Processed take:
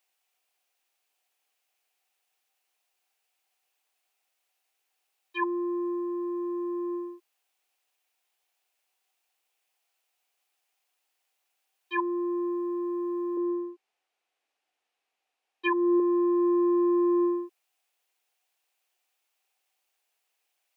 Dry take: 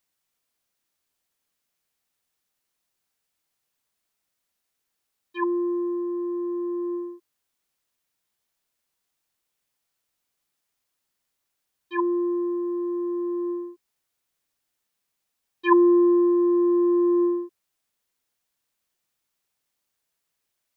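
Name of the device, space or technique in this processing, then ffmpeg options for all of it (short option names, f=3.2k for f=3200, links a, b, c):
laptop speaker: -filter_complex "[0:a]asettb=1/sr,asplit=3[a][b][c];[a]atrim=end=13.374[d];[b]atrim=start=13.37:end=16,asetpts=PTS-STARTPTS,afade=t=in:d=0.004:c=qsin,afade=t=out:st=2.626:d=0.004:c=qsin,aemphasis=mode=reproduction:type=bsi[e];[c]atrim=start=15.996[f];[d][e]acrossfade=d=0.004:c1=hsin:c2=qsin[g];[g][f]acrossfade=d=0.004:c1=qsin:c2=hsin,highpass=f=360:w=0.5412,highpass=f=360:w=1.3066,equalizer=f=760:t=o:w=0.24:g=11,equalizer=f=2.6k:t=o:w=0.57:g=7,alimiter=limit=-17.5dB:level=0:latency=1:release=457"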